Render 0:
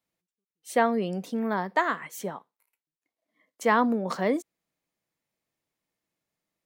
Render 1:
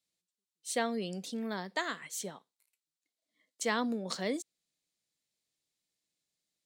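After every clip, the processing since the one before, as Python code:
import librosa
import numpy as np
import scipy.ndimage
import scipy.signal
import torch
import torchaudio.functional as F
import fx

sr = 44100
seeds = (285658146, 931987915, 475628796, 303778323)

y = fx.graphic_eq(x, sr, hz=(1000, 4000, 8000), db=(-6, 11, 11))
y = y * 10.0 ** (-8.0 / 20.0)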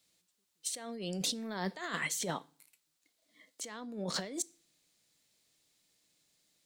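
y = fx.over_compress(x, sr, threshold_db=-44.0, ratio=-1.0)
y = fx.rev_fdn(y, sr, rt60_s=0.45, lf_ratio=1.25, hf_ratio=0.95, size_ms=20.0, drr_db=19.0)
y = y * 10.0 ** (5.0 / 20.0)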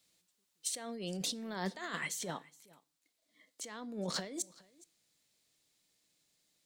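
y = x + 10.0 ** (-22.5 / 20.0) * np.pad(x, (int(418 * sr / 1000.0), 0))[:len(x)]
y = fx.rider(y, sr, range_db=10, speed_s=0.5)
y = y * 10.0 ** (-1.0 / 20.0)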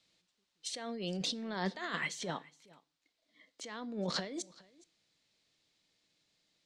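y = scipy.signal.sosfilt(scipy.signal.cheby1(2, 1.0, 4300.0, 'lowpass', fs=sr, output='sos'), x)
y = y * 10.0 ** (3.0 / 20.0)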